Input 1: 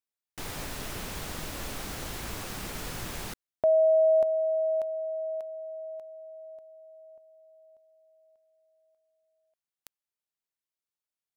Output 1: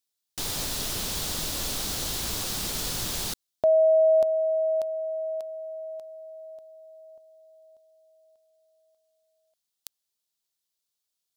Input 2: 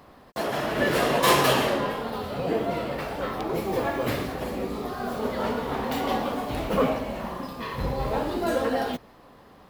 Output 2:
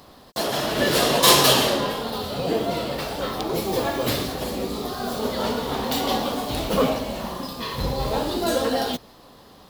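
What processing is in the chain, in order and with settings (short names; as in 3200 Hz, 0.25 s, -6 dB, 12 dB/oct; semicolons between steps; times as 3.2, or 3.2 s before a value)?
resonant high shelf 2900 Hz +7.5 dB, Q 1.5; gain +2.5 dB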